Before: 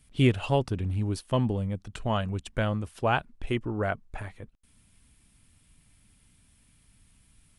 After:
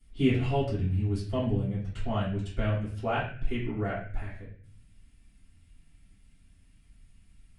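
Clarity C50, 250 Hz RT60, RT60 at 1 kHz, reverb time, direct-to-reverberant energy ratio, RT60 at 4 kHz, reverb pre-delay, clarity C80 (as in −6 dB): 4.0 dB, 0.70 s, 0.45 s, 0.45 s, −11.5 dB, 0.40 s, 3 ms, 8.0 dB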